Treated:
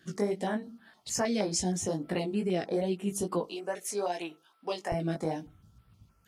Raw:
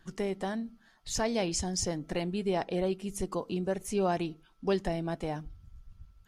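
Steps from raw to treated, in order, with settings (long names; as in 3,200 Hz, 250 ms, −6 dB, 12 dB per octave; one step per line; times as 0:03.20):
high-pass filter 140 Hz 12 dB per octave, from 0:03.47 630 Hz, from 0:04.92 150 Hz
downward compressor 2 to 1, threshold −33 dBFS, peak gain reduction 4.5 dB
chorus effect 2.4 Hz, delay 16.5 ms, depth 3.3 ms
notch on a step sequencer 6.4 Hz 940–6,400 Hz
level +8.5 dB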